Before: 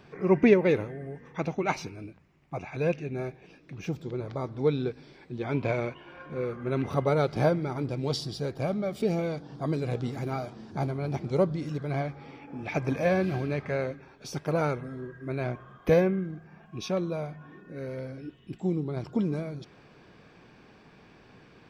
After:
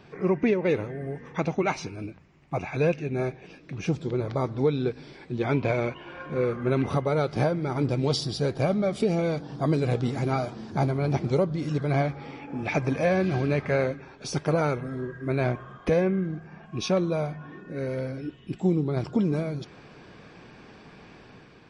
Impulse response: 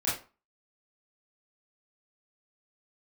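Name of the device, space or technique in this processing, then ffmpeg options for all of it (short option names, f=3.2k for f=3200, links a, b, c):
low-bitrate web radio: -af "dynaudnorm=f=130:g=7:m=4dB,alimiter=limit=-16dB:level=0:latency=1:release=348,volume=2.5dB" -ar 32000 -c:a libmp3lame -b:a 40k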